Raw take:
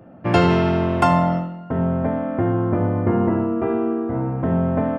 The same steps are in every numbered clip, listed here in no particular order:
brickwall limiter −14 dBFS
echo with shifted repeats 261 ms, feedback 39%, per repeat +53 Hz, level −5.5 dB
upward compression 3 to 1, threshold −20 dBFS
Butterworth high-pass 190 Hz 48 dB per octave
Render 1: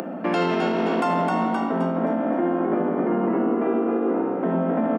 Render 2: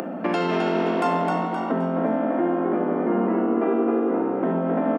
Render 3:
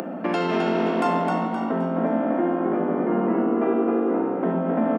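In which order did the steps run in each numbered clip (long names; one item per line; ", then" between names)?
echo with shifted repeats, then upward compression, then Butterworth high-pass, then brickwall limiter
brickwall limiter, then Butterworth high-pass, then echo with shifted repeats, then upward compression
brickwall limiter, then echo with shifted repeats, then upward compression, then Butterworth high-pass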